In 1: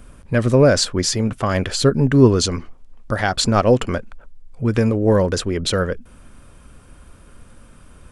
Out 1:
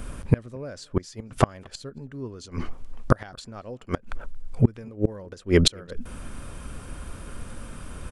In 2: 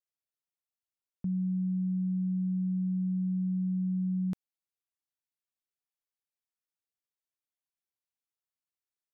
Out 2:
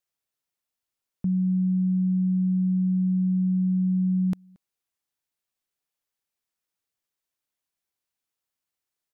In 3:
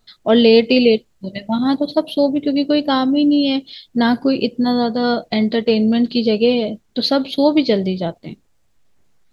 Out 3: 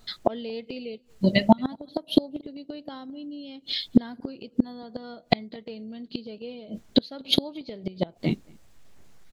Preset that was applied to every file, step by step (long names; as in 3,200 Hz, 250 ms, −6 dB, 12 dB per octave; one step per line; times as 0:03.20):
gate with flip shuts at −11 dBFS, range −31 dB
slap from a distant wall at 39 metres, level −29 dB
level +7 dB